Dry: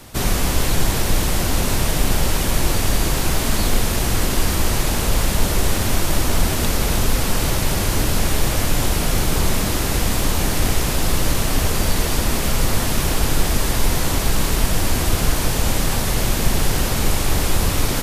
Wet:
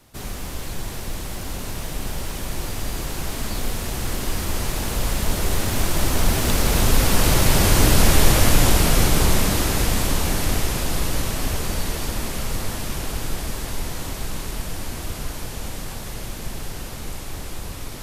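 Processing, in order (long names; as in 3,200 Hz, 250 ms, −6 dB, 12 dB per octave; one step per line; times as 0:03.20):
source passing by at 0:08.07, 8 m/s, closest 9.6 metres
level +4 dB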